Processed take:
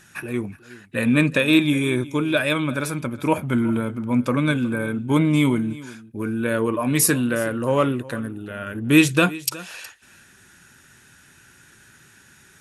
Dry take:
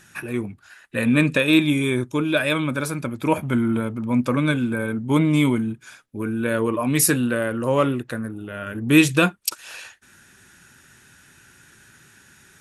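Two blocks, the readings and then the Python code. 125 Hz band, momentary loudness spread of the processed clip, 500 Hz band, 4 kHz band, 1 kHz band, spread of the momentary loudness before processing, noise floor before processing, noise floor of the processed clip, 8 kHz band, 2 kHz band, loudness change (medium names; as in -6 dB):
0.0 dB, 14 LU, 0.0 dB, 0.0 dB, 0.0 dB, 14 LU, -53 dBFS, -53 dBFS, 0.0 dB, 0.0 dB, 0.0 dB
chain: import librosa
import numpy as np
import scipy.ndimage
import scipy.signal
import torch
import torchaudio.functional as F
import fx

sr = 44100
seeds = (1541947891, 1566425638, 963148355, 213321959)

y = x + 10.0 ** (-19.0 / 20.0) * np.pad(x, (int(366 * sr / 1000.0), 0))[:len(x)]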